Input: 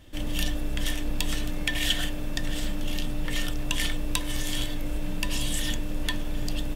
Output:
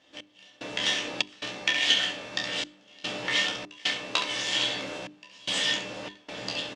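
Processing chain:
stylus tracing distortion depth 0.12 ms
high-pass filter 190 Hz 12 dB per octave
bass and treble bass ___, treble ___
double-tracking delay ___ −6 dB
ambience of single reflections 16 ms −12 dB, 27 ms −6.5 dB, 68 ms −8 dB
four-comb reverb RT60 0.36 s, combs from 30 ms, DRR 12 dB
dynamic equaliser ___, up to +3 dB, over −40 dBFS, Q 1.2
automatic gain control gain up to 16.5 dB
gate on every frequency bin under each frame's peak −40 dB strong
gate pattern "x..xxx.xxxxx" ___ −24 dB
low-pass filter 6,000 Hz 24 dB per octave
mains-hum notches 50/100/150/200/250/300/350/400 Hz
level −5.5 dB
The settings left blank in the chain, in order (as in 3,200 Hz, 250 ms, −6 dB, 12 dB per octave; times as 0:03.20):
−10 dB, +3 dB, 15 ms, 2,600 Hz, 74 BPM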